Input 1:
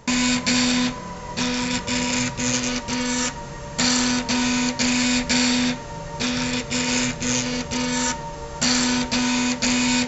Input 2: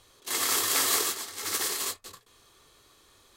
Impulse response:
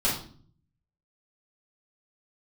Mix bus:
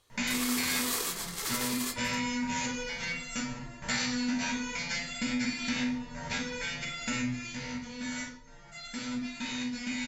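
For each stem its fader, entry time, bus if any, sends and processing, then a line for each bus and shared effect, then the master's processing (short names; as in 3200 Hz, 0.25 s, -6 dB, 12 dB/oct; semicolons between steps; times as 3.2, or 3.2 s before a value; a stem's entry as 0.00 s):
7.19 s -5 dB -> 7.56 s -14 dB, 0.10 s, send -5.5 dB, bell 1900 Hz +10 dB 0.73 oct; stepped resonator 4.3 Hz 61–690 Hz
+0.5 dB, 0.00 s, no send, de-hum 326.8 Hz, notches 32; gate -48 dBFS, range -10 dB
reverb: on, RT60 0.50 s, pre-delay 3 ms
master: compressor 2.5:1, threshold -31 dBFS, peak gain reduction 9 dB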